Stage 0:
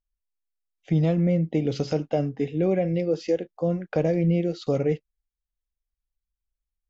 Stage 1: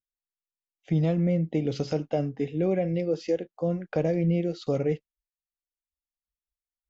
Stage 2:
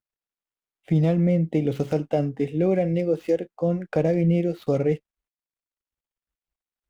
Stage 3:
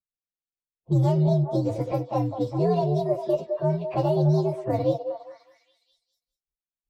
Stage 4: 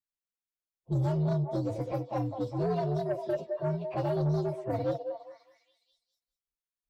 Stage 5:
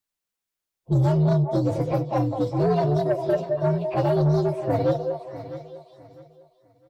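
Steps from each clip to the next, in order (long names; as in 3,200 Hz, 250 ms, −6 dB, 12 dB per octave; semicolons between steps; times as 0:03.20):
noise reduction from a noise print of the clip's start 19 dB; level −2.5 dB
running median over 9 samples; level +4 dB
partials spread apart or drawn together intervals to 128%; low-pass that shuts in the quiet parts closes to 380 Hz, open at −22 dBFS; echo through a band-pass that steps 203 ms, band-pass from 580 Hz, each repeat 0.7 octaves, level −5.5 dB
soft clipping −17.5 dBFS, distortion −17 dB; level −5 dB
repeating echo 653 ms, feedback 27%, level −14 dB; level +8.5 dB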